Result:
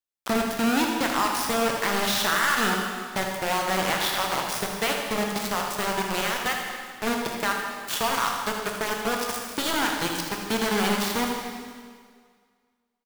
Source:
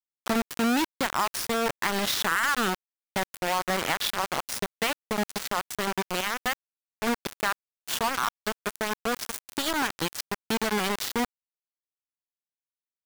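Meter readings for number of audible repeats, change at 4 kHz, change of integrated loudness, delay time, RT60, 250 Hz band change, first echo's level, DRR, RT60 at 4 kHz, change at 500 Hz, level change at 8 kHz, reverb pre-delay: 1, +3.0 dB, +3.0 dB, 79 ms, 1.9 s, +3.0 dB, −9.0 dB, 0.0 dB, 1.7 s, +3.5 dB, +3.0 dB, 6 ms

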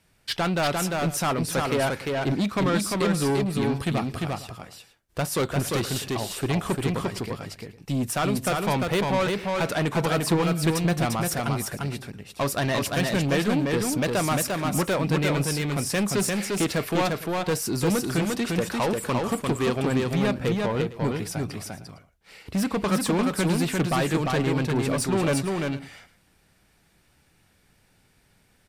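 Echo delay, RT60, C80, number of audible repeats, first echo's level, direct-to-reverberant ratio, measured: 348 ms, no reverb audible, no reverb audible, 2, −3.0 dB, no reverb audible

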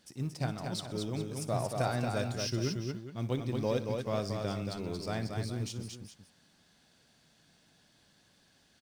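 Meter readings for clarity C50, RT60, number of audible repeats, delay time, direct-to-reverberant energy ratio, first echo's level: no reverb audible, no reverb audible, 4, 60 ms, no reverb audible, −15.5 dB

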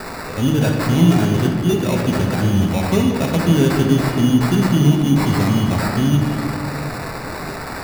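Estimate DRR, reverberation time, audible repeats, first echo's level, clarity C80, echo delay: −0.5 dB, 2.4 s, no echo audible, no echo audible, 4.0 dB, no echo audible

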